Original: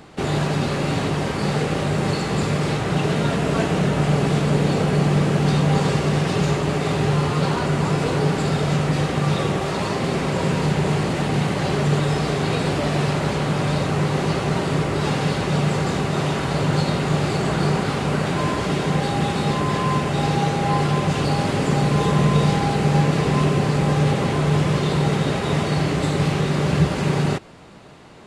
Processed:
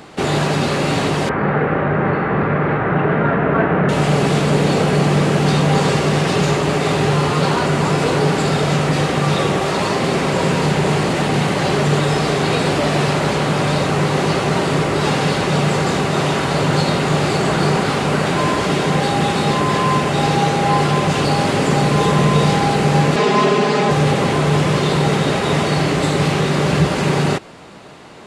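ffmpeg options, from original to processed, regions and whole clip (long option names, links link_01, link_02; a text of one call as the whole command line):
ffmpeg -i in.wav -filter_complex "[0:a]asettb=1/sr,asplit=3[link_01][link_02][link_03];[link_01]atrim=end=1.294[link_04];[link_02]atrim=start=1.29:end=3.89,asetpts=PTS-STARTPTS,afade=type=in:duration=0.004:curve=qsin,afade=type=out:start_time=2.596:duration=0.004:curve=qsin,lowpass=frequency=2000:width=0.5412,lowpass=frequency=2000:width=1.3066,equalizer=frequency=1500:width=1.8:gain=4.5[link_05];[link_03]atrim=start=3.886[link_06];[link_04][link_05]acrossfade=duration=0.004:curve1=hsin:curve2=qsin[link_07];[link_07][link_06]acrossfade=duration=0.004:curve1=qsin:curve2=hsin,asettb=1/sr,asplit=3[link_08][link_09][link_10];[link_08]atrim=end=23.164[link_11];[link_09]atrim=start=23.16:end=23.91,asetpts=PTS-STARTPTS,afade=type=in:duration=0.004:curve=qsin,afade=type=out:start_time=0.746:duration=0.004:curve=qsin,highpass=130,acrossover=split=190 7600:gain=0.224 1 0.178[link_12][link_13][link_14];[link_12][link_13][link_14]amix=inputs=3:normalize=0,aecho=1:1:4.8:0.84,atrim=end_sample=33075[link_15];[link_10]atrim=start=23.906[link_16];[link_11][link_15]acrossfade=duration=0.004:curve1=hsin:curve2=qsin[link_17];[link_17][link_16]acrossfade=duration=0.004:curve1=qsin:curve2=hsin,lowshelf=frequency=140:gain=-9,acontrast=73" out.wav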